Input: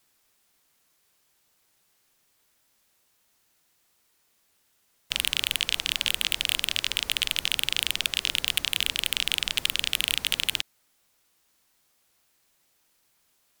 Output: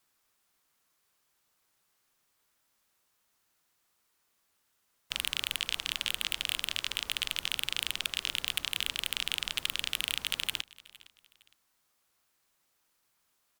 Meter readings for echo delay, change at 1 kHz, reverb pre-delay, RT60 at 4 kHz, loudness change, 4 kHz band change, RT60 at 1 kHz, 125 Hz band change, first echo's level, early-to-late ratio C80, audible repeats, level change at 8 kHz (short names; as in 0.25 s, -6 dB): 0.461 s, -3.5 dB, none, none, -6.5 dB, -6.5 dB, none, -7.0 dB, -21.5 dB, none, 2, -7.0 dB